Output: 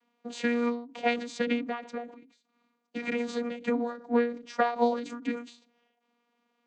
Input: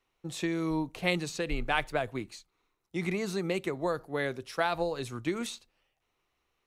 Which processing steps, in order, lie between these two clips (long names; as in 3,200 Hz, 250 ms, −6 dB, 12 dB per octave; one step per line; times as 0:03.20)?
channel vocoder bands 16, saw 275 Hz
phase-vocoder pitch shift with formants kept −2.5 semitones
every ending faded ahead of time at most 110 dB per second
level +8 dB